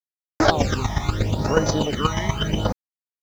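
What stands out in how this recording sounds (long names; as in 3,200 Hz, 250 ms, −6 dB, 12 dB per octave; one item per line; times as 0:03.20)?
phaser sweep stages 12, 0.79 Hz, lowest notch 450–3,500 Hz
chopped level 8.3 Hz, depth 60%, duty 15%
a quantiser's noise floor 10 bits, dither none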